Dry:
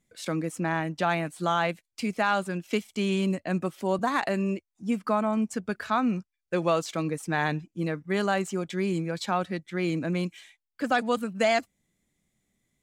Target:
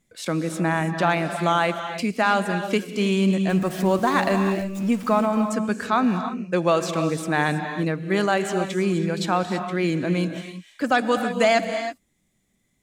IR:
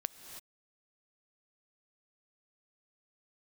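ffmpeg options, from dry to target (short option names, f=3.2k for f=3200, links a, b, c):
-filter_complex "[0:a]asettb=1/sr,asplit=3[a][b][c];[a]atrim=end=3.494[d];[b]atrim=start=3.49:end=5.26,asetpts=PTS-STARTPTS,afade=t=in:d=0.004:c=qsin,afade=t=out:st=1.766:d=0.004:c=qsin,aeval=exprs='val(0)+0.5*0.01*sgn(val(0))':c=same[e];[c]atrim=start=5.256[f];[d][e]acrossfade=d=0.004:c1=hsin:c2=qsin[g];[g][f]acrossfade=d=0.004:c1=qsin:c2=hsin[h];[1:a]atrim=start_sample=2205[i];[h][i]afir=irnorm=-1:irlink=0,volume=6dB"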